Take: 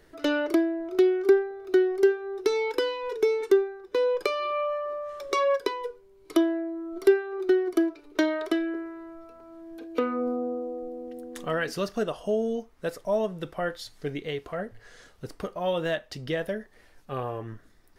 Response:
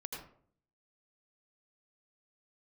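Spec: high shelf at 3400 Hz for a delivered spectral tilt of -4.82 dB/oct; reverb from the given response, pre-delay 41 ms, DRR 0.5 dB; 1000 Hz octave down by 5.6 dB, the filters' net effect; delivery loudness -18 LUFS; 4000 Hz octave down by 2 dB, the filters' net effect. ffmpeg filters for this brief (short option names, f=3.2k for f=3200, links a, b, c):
-filter_complex "[0:a]equalizer=f=1k:t=o:g=-7.5,highshelf=f=3.4k:g=4,equalizer=f=4k:t=o:g=-5,asplit=2[a][b];[1:a]atrim=start_sample=2205,adelay=41[c];[b][c]afir=irnorm=-1:irlink=0,volume=0.5dB[d];[a][d]amix=inputs=2:normalize=0,volume=7dB"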